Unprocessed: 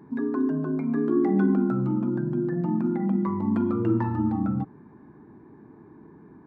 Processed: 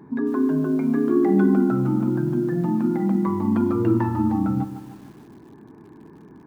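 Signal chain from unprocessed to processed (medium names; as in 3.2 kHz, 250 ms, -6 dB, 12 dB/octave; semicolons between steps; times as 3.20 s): bit-crushed delay 151 ms, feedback 55%, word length 8-bit, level -11.5 dB; trim +3.5 dB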